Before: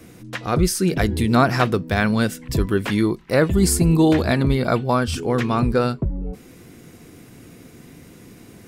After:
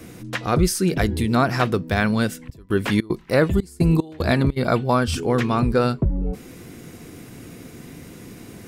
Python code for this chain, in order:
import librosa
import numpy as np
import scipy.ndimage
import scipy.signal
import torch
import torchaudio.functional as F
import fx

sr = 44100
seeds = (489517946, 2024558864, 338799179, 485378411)

y = fx.step_gate(x, sr, bpm=150, pattern='.xxxxx..xx..xxx', floor_db=-24.0, edge_ms=4.5, at=(2.39, 4.56), fade=0.02)
y = fx.rider(y, sr, range_db=4, speed_s=0.5)